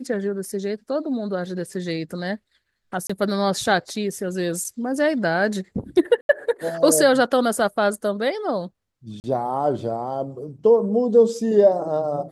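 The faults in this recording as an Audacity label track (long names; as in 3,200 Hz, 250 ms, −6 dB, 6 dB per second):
3.070000	3.100000	drop-out 25 ms
6.210000	6.290000	drop-out 81 ms
9.200000	9.240000	drop-out 39 ms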